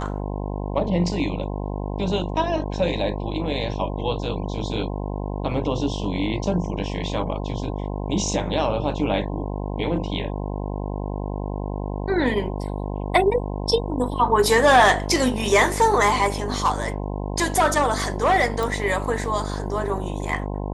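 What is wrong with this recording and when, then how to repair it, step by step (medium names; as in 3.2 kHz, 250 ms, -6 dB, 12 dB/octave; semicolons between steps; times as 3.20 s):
buzz 50 Hz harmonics 21 -28 dBFS
18.63 s: pop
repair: de-click; de-hum 50 Hz, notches 21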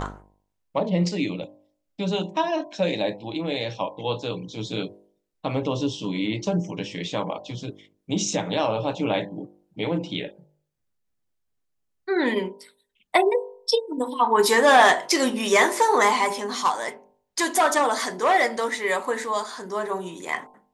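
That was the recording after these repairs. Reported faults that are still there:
nothing left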